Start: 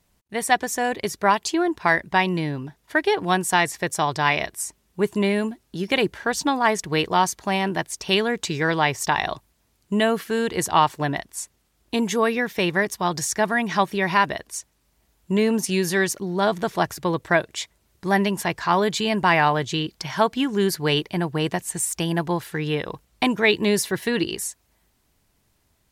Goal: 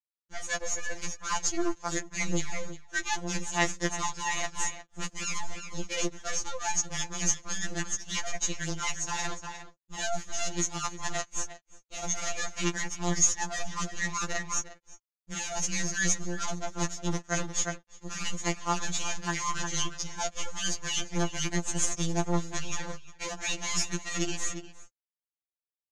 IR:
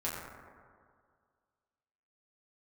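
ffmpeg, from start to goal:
-filter_complex "[0:a]acrossover=split=200|1100[link_01][link_02][link_03];[link_02]asoftclip=type=tanh:threshold=-23.5dB[link_04];[link_01][link_04][link_03]amix=inputs=3:normalize=0,adynamicequalizer=threshold=0.00794:dfrequency=240:dqfactor=6.7:tfrequency=240:tqfactor=6.7:attack=5:release=100:ratio=0.375:range=2.5:mode=boostabove:tftype=bell,acrusher=bits=4:dc=4:mix=0:aa=0.000001,aeval=exprs='sgn(val(0))*max(abs(val(0))-0.00891,0)':channel_layout=same,highshelf=frequency=3800:gain=-10.5,asplit=2[link_05][link_06];[link_06]adelay=355.7,volume=-16dB,highshelf=frequency=4000:gain=-8[link_07];[link_05][link_07]amix=inputs=2:normalize=0,areverse,acompressor=threshold=-30dB:ratio=16,areverse,lowpass=frequency=6600:width_type=q:width=13,afftfilt=real='re*2.83*eq(mod(b,8),0)':imag='im*2.83*eq(mod(b,8),0)':win_size=2048:overlap=0.75,volume=4.5dB"

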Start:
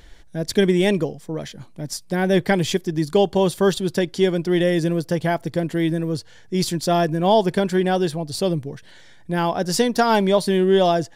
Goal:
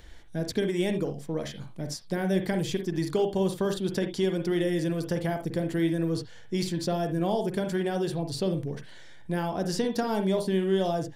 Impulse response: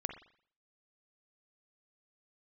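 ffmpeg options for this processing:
-filter_complex "[0:a]acrossover=split=540|6900[link_01][link_02][link_03];[link_01]acompressor=threshold=-23dB:ratio=4[link_04];[link_02]acompressor=threshold=-32dB:ratio=4[link_05];[link_03]acompressor=threshold=-44dB:ratio=4[link_06];[link_04][link_05][link_06]amix=inputs=3:normalize=0[link_07];[1:a]atrim=start_sample=2205,atrim=end_sample=3969[link_08];[link_07][link_08]afir=irnorm=-1:irlink=0,volume=-2.5dB"

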